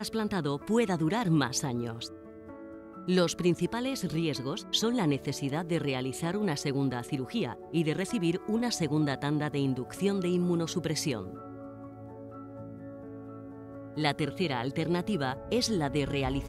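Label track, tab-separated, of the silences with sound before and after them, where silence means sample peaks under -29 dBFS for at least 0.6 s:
2.060000	3.080000	silence
11.210000	13.970000	silence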